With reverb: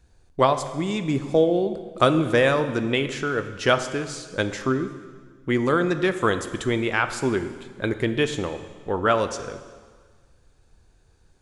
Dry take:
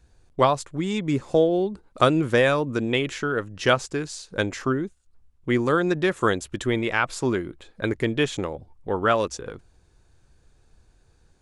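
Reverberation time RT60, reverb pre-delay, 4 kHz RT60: 1.6 s, 7 ms, 1.5 s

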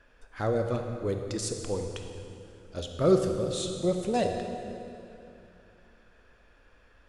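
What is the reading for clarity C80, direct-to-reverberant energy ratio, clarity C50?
5.5 dB, 4.0 dB, 5.0 dB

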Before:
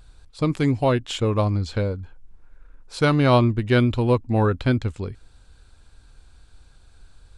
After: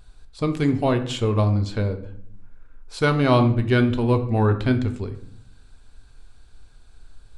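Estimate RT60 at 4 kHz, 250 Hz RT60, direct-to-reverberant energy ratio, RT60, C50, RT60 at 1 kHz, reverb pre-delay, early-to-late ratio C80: 0.40 s, 1.1 s, 7.0 dB, 0.65 s, 12.0 dB, 0.60 s, 3 ms, 15.0 dB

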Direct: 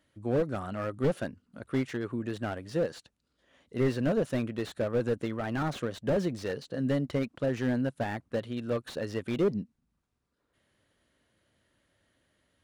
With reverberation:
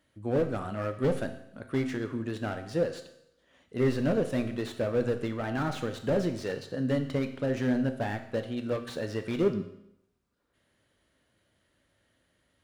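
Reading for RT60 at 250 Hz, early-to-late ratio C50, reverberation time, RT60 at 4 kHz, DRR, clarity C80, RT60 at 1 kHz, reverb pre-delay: 0.75 s, 10.5 dB, 0.80 s, 0.75 s, 6.5 dB, 12.5 dB, 0.75 s, 8 ms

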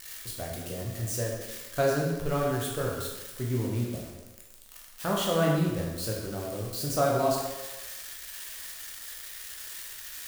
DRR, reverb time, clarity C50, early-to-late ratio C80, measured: -3.0 dB, 1.2 s, 1.5 dB, 4.0 dB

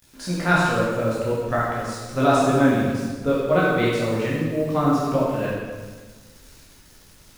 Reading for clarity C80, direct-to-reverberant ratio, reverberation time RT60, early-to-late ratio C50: 1.0 dB, -7.5 dB, 1.4 s, -1.5 dB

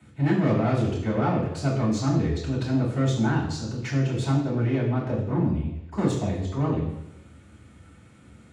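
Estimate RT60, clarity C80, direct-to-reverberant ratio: 0.90 s, 7.0 dB, -8.5 dB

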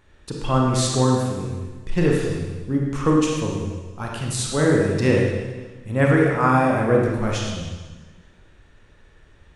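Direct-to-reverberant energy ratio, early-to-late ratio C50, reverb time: -2.0 dB, 0.0 dB, 1.3 s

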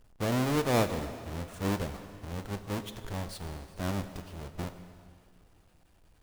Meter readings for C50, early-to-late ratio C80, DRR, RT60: 10.0 dB, 11.0 dB, 9.0 dB, 2.4 s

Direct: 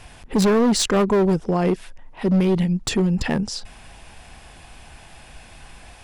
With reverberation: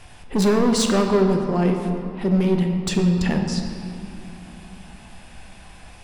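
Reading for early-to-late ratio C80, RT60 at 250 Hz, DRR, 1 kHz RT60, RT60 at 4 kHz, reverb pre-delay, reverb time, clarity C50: 6.0 dB, 4.3 s, 3.0 dB, 2.6 s, 1.4 s, 5 ms, 2.7 s, 5.0 dB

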